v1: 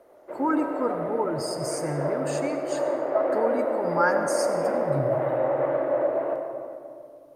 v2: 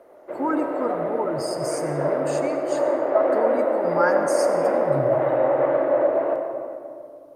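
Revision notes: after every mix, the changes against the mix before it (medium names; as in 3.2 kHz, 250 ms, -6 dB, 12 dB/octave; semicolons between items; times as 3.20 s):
background +4.5 dB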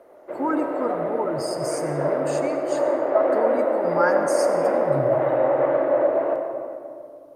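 no change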